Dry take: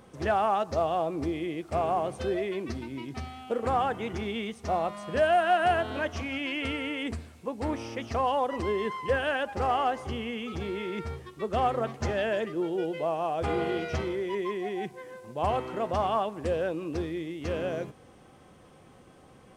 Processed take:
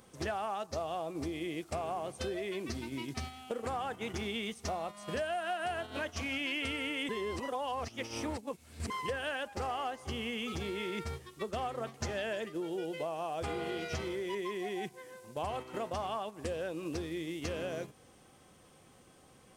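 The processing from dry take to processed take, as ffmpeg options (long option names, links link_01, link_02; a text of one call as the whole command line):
ffmpeg -i in.wav -filter_complex "[0:a]asplit=3[link_01][link_02][link_03];[link_01]atrim=end=7.092[link_04];[link_02]atrim=start=7.088:end=8.902,asetpts=PTS-STARTPTS,areverse[link_05];[link_03]atrim=start=8.898[link_06];[link_04][link_05]acrossfade=duration=0.004:curve1=hsin:curve2=hsin[link_07];[link_07][link_06]acrossfade=duration=0.004:curve1=hsin:curve2=hsin,acompressor=threshold=-35dB:ratio=5,agate=range=-7dB:threshold=-40dB:ratio=16:detection=peak,highshelf=frequency=3400:gain=12" out.wav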